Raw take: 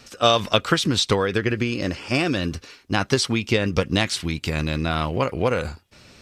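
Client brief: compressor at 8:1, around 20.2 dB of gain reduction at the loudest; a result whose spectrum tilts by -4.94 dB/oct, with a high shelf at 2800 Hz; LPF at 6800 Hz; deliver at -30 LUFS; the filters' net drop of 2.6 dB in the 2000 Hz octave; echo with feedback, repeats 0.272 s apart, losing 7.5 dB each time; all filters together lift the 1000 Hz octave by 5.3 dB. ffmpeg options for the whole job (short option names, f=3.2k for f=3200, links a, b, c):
-af "lowpass=6.8k,equalizer=f=1k:t=o:g=9,equalizer=f=2k:t=o:g=-8.5,highshelf=f=2.8k:g=3.5,acompressor=threshold=-31dB:ratio=8,aecho=1:1:272|544|816|1088|1360:0.422|0.177|0.0744|0.0312|0.0131,volume=5dB"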